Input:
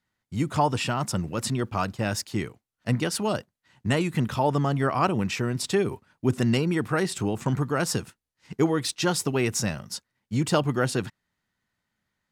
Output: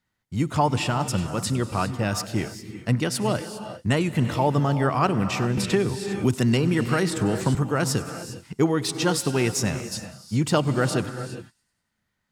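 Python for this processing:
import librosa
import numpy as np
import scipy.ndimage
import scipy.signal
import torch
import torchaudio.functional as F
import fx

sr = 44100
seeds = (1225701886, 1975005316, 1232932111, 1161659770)

y = fx.low_shelf(x, sr, hz=150.0, db=3.0)
y = fx.echo_wet_highpass(y, sr, ms=97, feedback_pct=57, hz=5000.0, wet_db=-18.0)
y = fx.rev_gated(y, sr, seeds[0], gate_ms=430, shape='rising', drr_db=9.5)
y = fx.band_squash(y, sr, depth_pct=70, at=(5.57, 7.55))
y = F.gain(torch.from_numpy(y), 1.0).numpy()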